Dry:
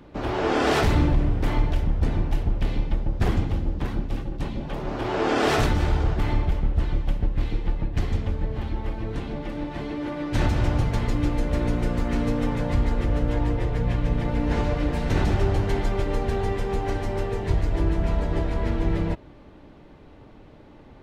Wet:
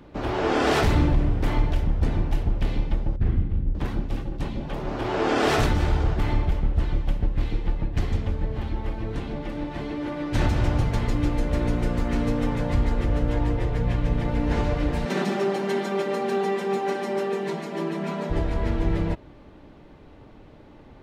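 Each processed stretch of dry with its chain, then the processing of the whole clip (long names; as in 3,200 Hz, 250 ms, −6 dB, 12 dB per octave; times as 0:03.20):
0:03.16–0:03.75: low-pass filter 1,600 Hz + parametric band 830 Hz −15 dB 2.4 octaves + double-tracking delay 35 ms −6 dB
0:15.05–0:18.30: linear-phase brick-wall high-pass 160 Hz + comb filter 5.1 ms, depth 61%
whole clip: no processing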